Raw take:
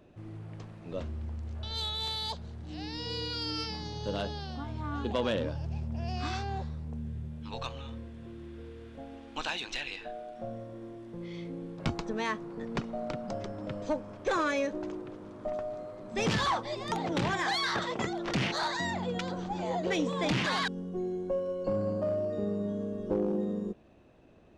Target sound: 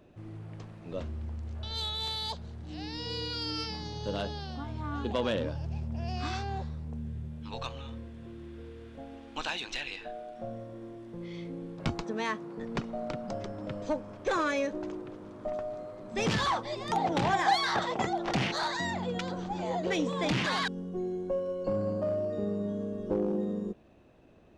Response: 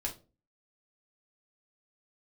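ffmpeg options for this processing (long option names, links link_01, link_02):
-filter_complex "[0:a]asettb=1/sr,asplit=3[link_01][link_02][link_03];[link_01]atrim=end=12.044[link_04];[link_02]atrim=start=12.04:end=12.59,asetpts=PTS-STARTPTS,afade=type=in:duration=0.004:curve=qsin,afade=type=out:start_time=0.546:duration=0.004:curve=qsin,highpass=120[link_05];[link_03]atrim=start=12.586[link_06];[link_04][link_05]acrossfade=duration=0.004:curve1=hsin:curve2=qsin[link_07];[link_07][link_06]acrossfade=duration=0.004:curve1=qsin:curve2=hsin,asettb=1/sr,asplit=3[link_08][link_09][link_10];[link_08]atrim=end=16.934[link_11];[link_09]atrim=start=16.93:end=18.43,asetpts=PTS-STARTPTS,afade=type=in:duration=0.004:curve=qsin,afade=type=out:start_time=1.496:duration=0.004:curve=qsin,equalizer=frequency=780:width_type=o:width=0.45:gain=9.5[link_12];[link_10]atrim=start=18.426[link_13];[link_11][link_12]acrossfade=duration=0.004:curve1=hsin:curve2=qsin[link_14];[link_14][link_13]acrossfade=duration=0.004:curve1=qsin:curve2=hsin"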